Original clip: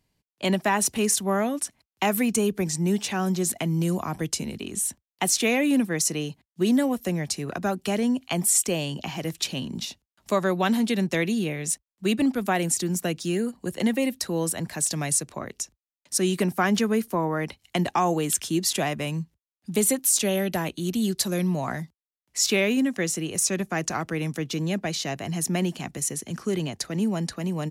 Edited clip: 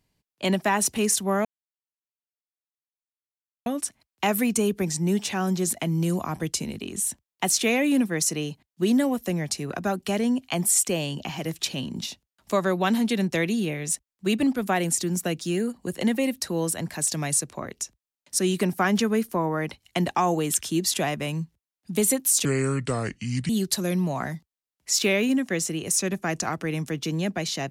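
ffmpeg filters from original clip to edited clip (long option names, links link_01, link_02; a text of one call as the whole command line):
ffmpeg -i in.wav -filter_complex "[0:a]asplit=4[link_01][link_02][link_03][link_04];[link_01]atrim=end=1.45,asetpts=PTS-STARTPTS,afade=type=out:start_time=1.446:duration=0.004:curve=hsin,apad=pad_dur=2.21[link_05];[link_02]atrim=start=1.45:end=20.244,asetpts=PTS-STARTPTS,afade=type=in:duration=0.004:curve=hsin[link_06];[link_03]atrim=start=20.24:end=20.97,asetpts=PTS-STARTPTS,asetrate=30870,aresample=44100[link_07];[link_04]atrim=start=20.966[link_08];[link_05][link_06]concat=n=2:v=0:a=1[link_09];[link_09][link_07]acrossfade=duration=0.004:curve1=hsin:curve2=hsin[link_10];[link_10][link_08]acrossfade=duration=0.004:curve1=hsin:curve2=hsin" out.wav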